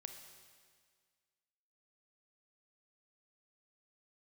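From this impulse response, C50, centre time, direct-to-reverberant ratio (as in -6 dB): 6.5 dB, 34 ms, 5.5 dB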